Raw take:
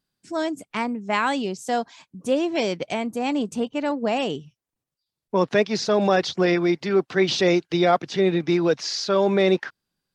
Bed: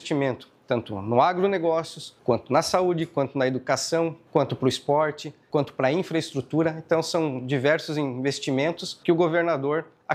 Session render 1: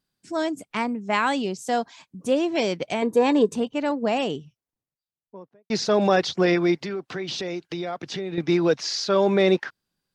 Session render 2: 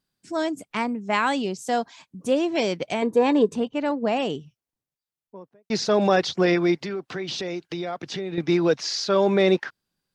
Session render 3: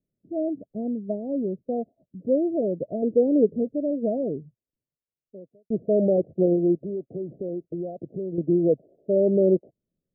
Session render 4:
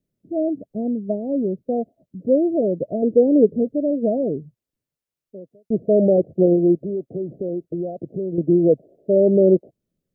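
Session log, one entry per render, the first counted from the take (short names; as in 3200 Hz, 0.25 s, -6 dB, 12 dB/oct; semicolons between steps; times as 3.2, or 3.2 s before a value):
3.02–3.56 small resonant body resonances 440/990/1700/3700 Hz, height 14 dB, ringing for 25 ms; 4.07–5.7 studio fade out; 6.81–8.38 compressor, threshold -27 dBFS
3.1–4.25 high shelf 6400 Hz -9 dB
steep low-pass 660 Hz 96 dB/oct
gain +5 dB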